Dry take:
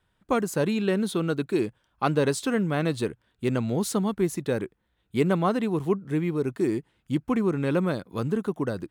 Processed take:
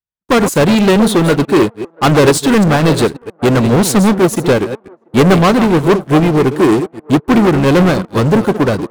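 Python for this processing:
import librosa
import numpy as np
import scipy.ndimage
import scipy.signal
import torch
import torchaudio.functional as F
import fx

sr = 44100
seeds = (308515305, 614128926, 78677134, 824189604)

p1 = fx.reverse_delay(x, sr, ms=132, wet_db=-12.0)
p2 = fx.leveller(p1, sr, passes=5)
p3 = p2 + fx.echo_wet_bandpass(p2, sr, ms=684, feedback_pct=38, hz=670.0, wet_db=-9.5, dry=0)
p4 = fx.upward_expand(p3, sr, threshold_db=-29.0, expansion=2.5)
y = p4 * librosa.db_to_amplitude(7.5)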